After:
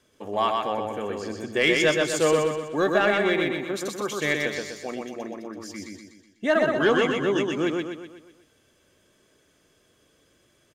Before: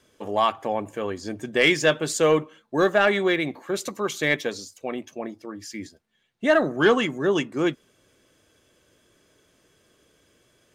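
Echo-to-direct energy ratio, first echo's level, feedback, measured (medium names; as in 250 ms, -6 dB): -2.0 dB, -3.0 dB, 48%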